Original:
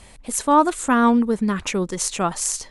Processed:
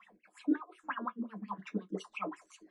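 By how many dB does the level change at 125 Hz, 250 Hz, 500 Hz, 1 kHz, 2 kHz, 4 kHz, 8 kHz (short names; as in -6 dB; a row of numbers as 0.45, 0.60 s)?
-18.0 dB, -17.0 dB, -21.5 dB, -22.0 dB, -16.0 dB, -23.0 dB, under -35 dB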